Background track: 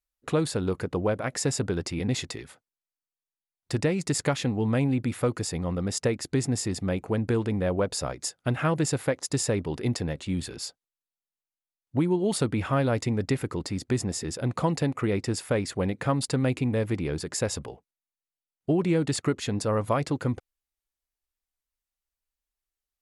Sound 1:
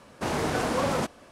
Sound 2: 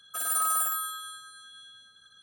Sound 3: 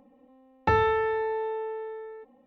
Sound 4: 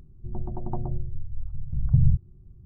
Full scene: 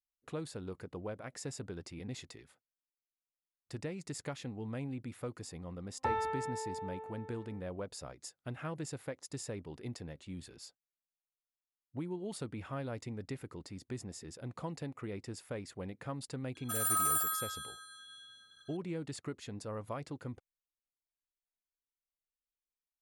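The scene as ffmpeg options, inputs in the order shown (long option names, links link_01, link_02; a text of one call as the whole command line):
ffmpeg -i bed.wav -i cue0.wav -i cue1.wav -i cue2.wav -filter_complex "[0:a]volume=-15.5dB[link_01];[3:a]equalizer=frequency=1000:width=3.5:gain=13,atrim=end=2.46,asetpts=PTS-STARTPTS,volume=-15dB,afade=type=in:duration=0.004:curve=hsin,afade=type=out:start_time=2.456:duration=0.004:curve=hsin,adelay=236817S[link_02];[2:a]atrim=end=2.22,asetpts=PTS-STARTPTS,volume=-4dB,afade=type=in:duration=0.004:curve=hsin,afade=type=out:start_time=2.216:duration=0.004:curve=hsin,adelay=16550[link_03];[link_01][link_02][link_03]amix=inputs=3:normalize=0" out.wav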